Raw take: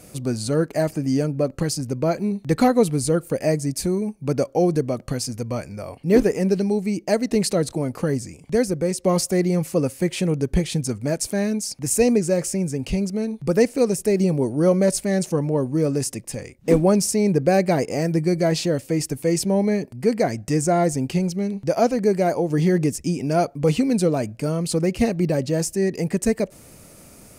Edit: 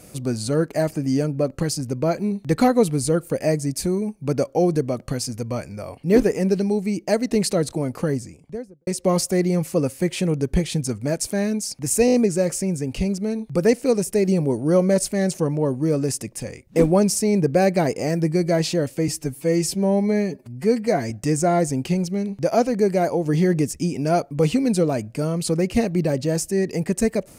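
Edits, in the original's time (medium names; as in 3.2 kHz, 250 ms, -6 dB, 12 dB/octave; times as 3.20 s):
8.01–8.87 s: studio fade out
12.06 s: stutter 0.02 s, 5 plays
19.00–20.35 s: stretch 1.5×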